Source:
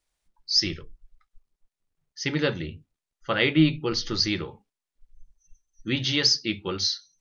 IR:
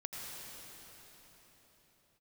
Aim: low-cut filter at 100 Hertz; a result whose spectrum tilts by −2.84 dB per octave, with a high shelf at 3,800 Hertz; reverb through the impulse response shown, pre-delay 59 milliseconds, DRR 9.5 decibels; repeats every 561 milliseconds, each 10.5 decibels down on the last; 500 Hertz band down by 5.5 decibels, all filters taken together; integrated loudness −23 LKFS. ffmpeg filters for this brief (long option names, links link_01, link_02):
-filter_complex "[0:a]highpass=100,equalizer=frequency=500:width_type=o:gain=-7.5,highshelf=frequency=3800:gain=4,aecho=1:1:561|1122|1683:0.299|0.0896|0.0269,asplit=2[link_01][link_02];[1:a]atrim=start_sample=2205,adelay=59[link_03];[link_02][link_03]afir=irnorm=-1:irlink=0,volume=-10dB[link_04];[link_01][link_04]amix=inputs=2:normalize=0,volume=1dB"